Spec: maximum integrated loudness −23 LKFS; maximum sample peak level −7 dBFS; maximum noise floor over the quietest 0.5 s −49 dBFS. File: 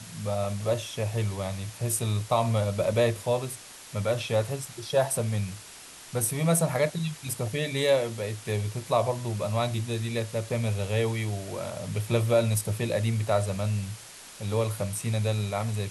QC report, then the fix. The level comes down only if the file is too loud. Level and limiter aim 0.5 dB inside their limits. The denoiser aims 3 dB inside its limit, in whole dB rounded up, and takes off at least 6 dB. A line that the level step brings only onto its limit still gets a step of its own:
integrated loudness −28.5 LKFS: in spec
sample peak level −11.5 dBFS: in spec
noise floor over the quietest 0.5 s −46 dBFS: out of spec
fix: broadband denoise 6 dB, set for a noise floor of −46 dBFS

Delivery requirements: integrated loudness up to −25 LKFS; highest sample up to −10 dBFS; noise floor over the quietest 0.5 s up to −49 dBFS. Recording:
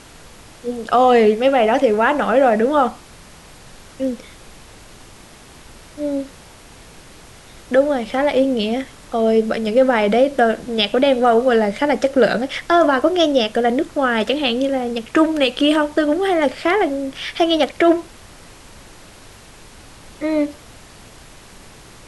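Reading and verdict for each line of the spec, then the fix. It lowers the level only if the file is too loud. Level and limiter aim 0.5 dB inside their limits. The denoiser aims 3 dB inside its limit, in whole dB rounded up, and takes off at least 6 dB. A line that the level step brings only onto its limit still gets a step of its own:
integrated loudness −17.5 LKFS: out of spec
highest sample −4.0 dBFS: out of spec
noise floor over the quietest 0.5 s −42 dBFS: out of spec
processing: level −8 dB

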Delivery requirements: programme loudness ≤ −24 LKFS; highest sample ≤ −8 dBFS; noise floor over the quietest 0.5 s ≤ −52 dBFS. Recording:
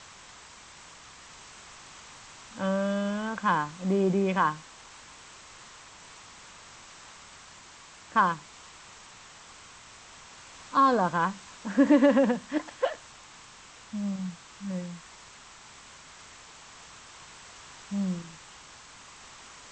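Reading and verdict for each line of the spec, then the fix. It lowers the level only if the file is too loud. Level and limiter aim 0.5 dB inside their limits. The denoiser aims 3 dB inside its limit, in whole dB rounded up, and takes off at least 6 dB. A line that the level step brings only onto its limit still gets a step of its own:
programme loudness −27.5 LKFS: in spec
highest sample −10.0 dBFS: in spec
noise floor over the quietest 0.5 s −50 dBFS: out of spec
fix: broadband denoise 6 dB, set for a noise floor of −50 dBFS

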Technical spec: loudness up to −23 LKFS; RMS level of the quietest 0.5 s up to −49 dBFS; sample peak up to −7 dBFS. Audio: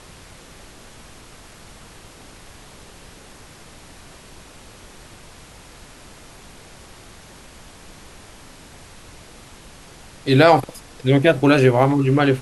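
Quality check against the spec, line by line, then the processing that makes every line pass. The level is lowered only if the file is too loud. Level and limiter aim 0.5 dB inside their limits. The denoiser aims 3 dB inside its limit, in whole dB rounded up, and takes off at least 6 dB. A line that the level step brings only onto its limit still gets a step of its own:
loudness −16.0 LKFS: out of spec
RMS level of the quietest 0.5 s −43 dBFS: out of spec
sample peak −2.0 dBFS: out of spec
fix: level −7.5 dB

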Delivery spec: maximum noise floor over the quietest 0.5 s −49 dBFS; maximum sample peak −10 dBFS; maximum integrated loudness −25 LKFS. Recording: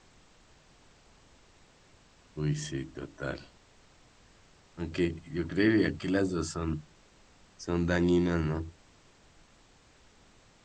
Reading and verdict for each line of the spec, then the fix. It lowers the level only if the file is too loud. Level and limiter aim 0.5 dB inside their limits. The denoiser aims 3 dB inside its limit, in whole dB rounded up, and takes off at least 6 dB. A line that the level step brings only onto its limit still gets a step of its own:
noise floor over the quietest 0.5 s −60 dBFS: in spec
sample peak −12.0 dBFS: in spec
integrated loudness −31.0 LKFS: in spec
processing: no processing needed

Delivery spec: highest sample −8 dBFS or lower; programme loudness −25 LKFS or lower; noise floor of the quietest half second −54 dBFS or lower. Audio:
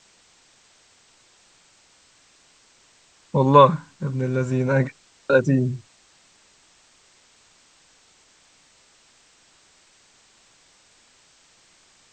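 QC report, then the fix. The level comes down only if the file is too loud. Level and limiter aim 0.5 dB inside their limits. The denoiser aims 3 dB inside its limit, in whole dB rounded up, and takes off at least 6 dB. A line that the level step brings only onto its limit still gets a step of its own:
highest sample −1.5 dBFS: out of spec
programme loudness −20.0 LKFS: out of spec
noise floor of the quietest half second −57 dBFS: in spec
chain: level −5.5 dB
brickwall limiter −8.5 dBFS

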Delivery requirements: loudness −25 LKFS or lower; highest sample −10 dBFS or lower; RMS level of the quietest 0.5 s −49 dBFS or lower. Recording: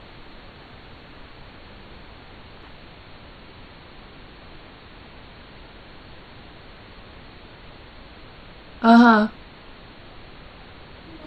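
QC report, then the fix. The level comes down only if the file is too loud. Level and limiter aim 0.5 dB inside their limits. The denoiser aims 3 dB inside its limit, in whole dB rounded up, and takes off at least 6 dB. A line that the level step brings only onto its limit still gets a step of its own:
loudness −15.5 LKFS: out of spec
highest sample −2.5 dBFS: out of spec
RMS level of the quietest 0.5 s −44 dBFS: out of spec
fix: level −10 dB

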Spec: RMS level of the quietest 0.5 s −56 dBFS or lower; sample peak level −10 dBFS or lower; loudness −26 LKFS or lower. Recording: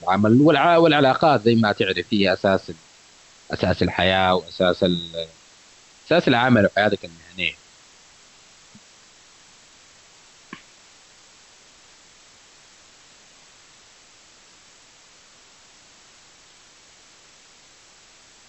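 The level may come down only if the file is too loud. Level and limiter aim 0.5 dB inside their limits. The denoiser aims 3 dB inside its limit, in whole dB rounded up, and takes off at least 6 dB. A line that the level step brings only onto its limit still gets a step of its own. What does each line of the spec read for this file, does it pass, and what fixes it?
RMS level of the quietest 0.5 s −51 dBFS: out of spec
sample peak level −5.0 dBFS: out of spec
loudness −19.0 LKFS: out of spec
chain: level −7.5 dB

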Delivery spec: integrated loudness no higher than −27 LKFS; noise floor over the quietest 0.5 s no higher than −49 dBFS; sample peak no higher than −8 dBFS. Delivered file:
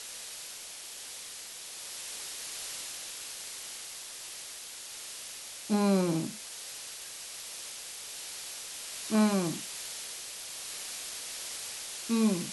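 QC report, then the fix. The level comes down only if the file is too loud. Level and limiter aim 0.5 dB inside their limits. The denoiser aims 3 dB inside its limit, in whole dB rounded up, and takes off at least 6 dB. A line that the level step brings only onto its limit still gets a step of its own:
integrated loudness −35.0 LKFS: in spec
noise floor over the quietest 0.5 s −44 dBFS: out of spec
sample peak −16.0 dBFS: in spec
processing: broadband denoise 8 dB, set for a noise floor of −44 dBFS

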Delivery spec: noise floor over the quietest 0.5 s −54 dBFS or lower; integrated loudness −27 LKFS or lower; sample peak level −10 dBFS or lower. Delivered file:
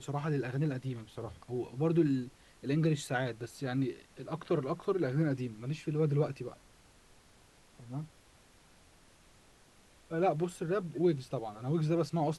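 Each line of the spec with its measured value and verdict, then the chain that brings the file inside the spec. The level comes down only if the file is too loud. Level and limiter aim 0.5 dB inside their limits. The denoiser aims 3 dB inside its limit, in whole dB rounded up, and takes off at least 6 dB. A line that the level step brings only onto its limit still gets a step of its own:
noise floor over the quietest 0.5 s −62 dBFS: in spec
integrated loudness −34.0 LKFS: in spec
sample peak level −17.5 dBFS: in spec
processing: no processing needed

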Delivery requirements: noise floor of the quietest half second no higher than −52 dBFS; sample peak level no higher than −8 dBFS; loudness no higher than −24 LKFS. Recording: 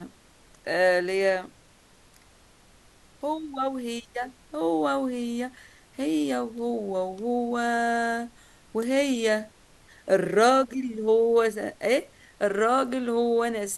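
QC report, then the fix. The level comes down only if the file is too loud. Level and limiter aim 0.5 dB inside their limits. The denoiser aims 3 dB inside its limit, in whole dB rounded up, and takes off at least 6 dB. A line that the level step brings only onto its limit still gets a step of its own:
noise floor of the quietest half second −57 dBFS: in spec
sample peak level −9.0 dBFS: in spec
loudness −26.0 LKFS: in spec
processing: no processing needed

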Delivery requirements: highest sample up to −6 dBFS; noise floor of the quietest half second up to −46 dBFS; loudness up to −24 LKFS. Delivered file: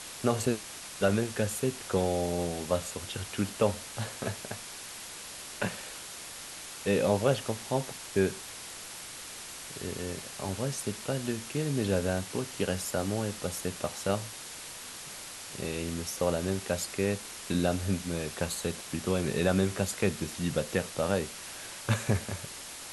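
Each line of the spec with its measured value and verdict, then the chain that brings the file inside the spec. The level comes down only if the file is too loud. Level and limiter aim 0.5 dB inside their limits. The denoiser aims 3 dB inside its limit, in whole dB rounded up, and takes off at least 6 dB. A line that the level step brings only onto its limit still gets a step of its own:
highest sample −11.5 dBFS: in spec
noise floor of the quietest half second −43 dBFS: out of spec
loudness −32.5 LKFS: in spec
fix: broadband denoise 6 dB, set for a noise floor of −43 dBFS

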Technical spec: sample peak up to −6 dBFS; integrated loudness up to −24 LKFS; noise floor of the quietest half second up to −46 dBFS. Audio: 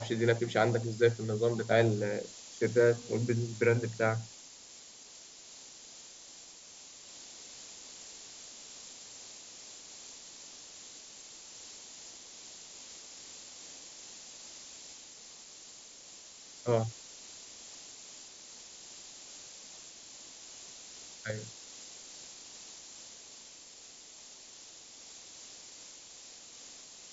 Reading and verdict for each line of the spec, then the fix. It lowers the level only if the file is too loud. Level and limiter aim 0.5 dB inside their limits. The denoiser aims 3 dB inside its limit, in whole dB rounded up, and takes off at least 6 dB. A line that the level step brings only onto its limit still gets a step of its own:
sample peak −13.0 dBFS: in spec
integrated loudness −36.0 LKFS: in spec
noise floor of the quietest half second −53 dBFS: in spec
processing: no processing needed

